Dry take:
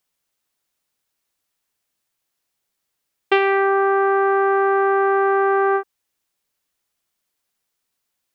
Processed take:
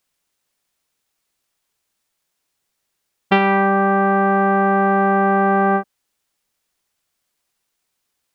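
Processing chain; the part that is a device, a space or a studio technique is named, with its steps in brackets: octave pedal (harmony voices -12 st -3 dB); trim +1 dB

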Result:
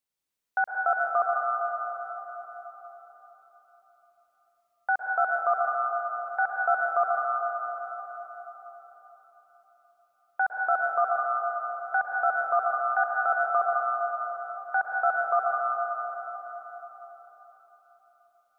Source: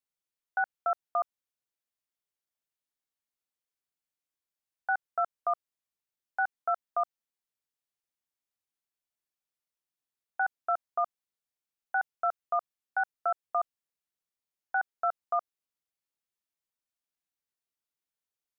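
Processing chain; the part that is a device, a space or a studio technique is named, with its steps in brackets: cathedral (reverberation RT60 4.5 s, pre-delay 104 ms, DRR -2.5 dB); trim +3 dB

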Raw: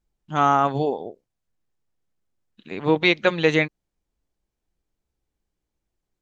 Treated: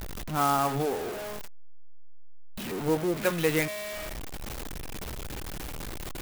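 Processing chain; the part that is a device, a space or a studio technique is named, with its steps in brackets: 2.71–3.17 s: steep low-pass 970 Hz 96 dB/octave; de-hum 208.6 Hz, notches 16; early CD player with a faulty converter (jump at every zero crossing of -21.5 dBFS; sampling jitter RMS 0.039 ms); trim -8.5 dB

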